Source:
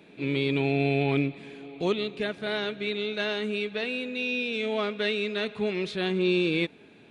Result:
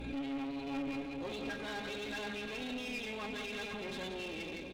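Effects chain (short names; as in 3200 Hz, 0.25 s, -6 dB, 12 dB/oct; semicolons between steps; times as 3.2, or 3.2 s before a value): regenerating reverse delay 0.127 s, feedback 66%, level -10.5 dB; HPF 57 Hz 24 dB/oct; high shelf 2200 Hz -3 dB; notch 1900 Hz, Q 14; limiter -25 dBFS, peak gain reduction 12.5 dB; hum 60 Hz, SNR 17 dB; resonator 270 Hz, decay 0.15 s, harmonics all, mix 90%; tempo 1.5×; soft clip -37 dBFS, distortion -18 dB; split-band echo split 660 Hz, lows 0.638 s, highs 0.18 s, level -9 dB; one-sided clip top -53.5 dBFS; backwards sustainer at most 42 dB/s; gain +8 dB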